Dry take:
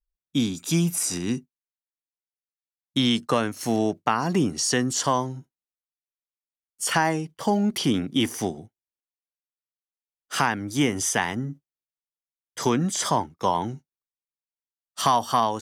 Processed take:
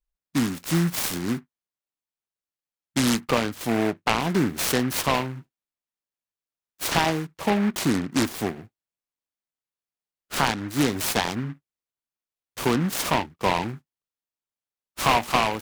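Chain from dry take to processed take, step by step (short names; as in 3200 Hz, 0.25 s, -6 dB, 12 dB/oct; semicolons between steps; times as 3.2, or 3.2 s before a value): noise-modulated delay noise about 1400 Hz, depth 0.11 ms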